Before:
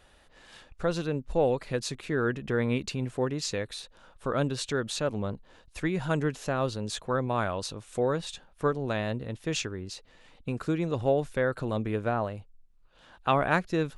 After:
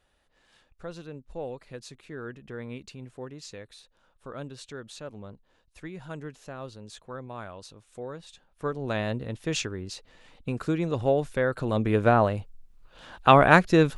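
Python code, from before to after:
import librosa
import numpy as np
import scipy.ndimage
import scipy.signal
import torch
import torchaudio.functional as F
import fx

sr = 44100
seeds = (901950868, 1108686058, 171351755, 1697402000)

y = fx.gain(x, sr, db=fx.line((8.3, -11.0), (8.96, 1.5), (11.56, 1.5), (12.08, 8.5)))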